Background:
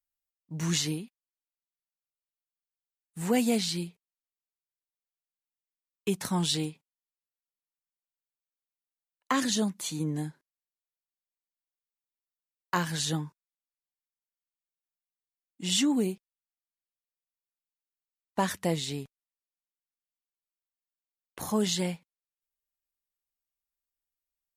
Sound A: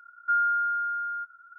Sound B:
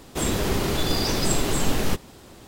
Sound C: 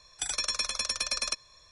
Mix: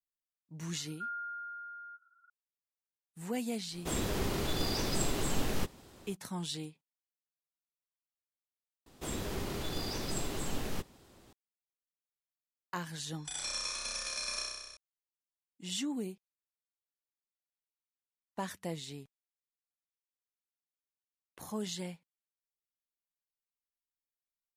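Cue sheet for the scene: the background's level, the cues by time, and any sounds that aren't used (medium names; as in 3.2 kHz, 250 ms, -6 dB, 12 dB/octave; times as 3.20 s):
background -10.5 dB
0.72 s: add A -15.5 dB + Butterworth band-pass 1.2 kHz, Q 0.64
3.70 s: add B -9.5 dB, fades 0.05 s
8.86 s: replace with B -13.5 dB
13.06 s: add C -10.5 dB + flutter echo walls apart 5.5 m, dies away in 1.3 s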